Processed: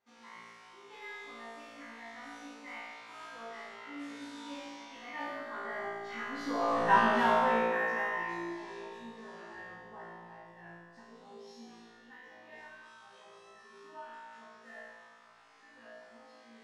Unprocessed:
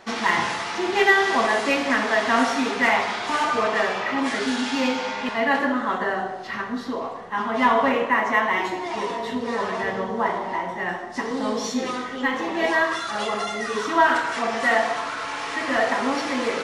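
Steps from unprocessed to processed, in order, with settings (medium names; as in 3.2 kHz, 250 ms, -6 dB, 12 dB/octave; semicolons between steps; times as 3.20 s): Doppler pass-by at 6.83 s, 21 m/s, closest 2.1 m; flutter echo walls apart 3 m, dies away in 1.3 s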